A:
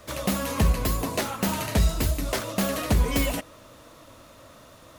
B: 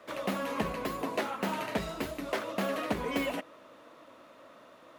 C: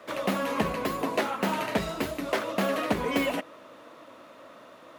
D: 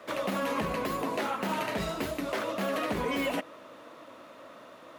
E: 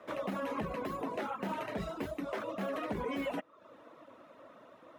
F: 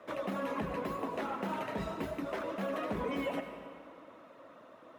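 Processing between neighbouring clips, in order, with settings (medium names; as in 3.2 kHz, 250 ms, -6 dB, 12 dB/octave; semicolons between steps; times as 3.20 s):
three-band isolator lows -24 dB, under 200 Hz, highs -14 dB, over 3.3 kHz; trim -3 dB
high-pass 55 Hz; trim +5 dB
peak limiter -21.5 dBFS, peak gain reduction 9 dB
treble shelf 2.5 kHz -10.5 dB; reverb removal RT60 0.61 s; band-stop 4.5 kHz, Q 19; trim -3.5 dB
reverberation RT60 2.2 s, pre-delay 77 ms, DRR 6.5 dB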